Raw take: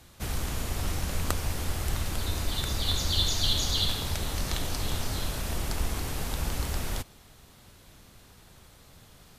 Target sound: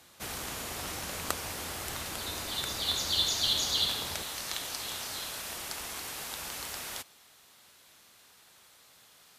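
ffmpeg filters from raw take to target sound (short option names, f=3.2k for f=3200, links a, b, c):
-af "asetnsamples=n=441:p=0,asendcmd='4.22 highpass f 1200',highpass=f=480:p=1"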